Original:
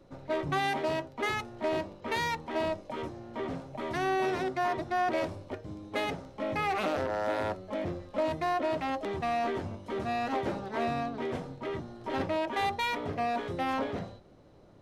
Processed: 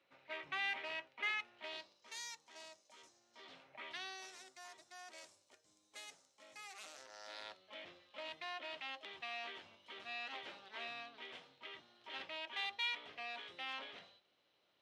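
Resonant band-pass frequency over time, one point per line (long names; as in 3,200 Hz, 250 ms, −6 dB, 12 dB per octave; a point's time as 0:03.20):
resonant band-pass, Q 2.4
0:01.53 2,500 Hz
0:02.11 6,700 Hz
0:03.30 6,700 Hz
0:03.72 2,000 Hz
0:04.32 7,400 Hz
0:06.93 7,400 Hz
0:07.68 3,100 Hz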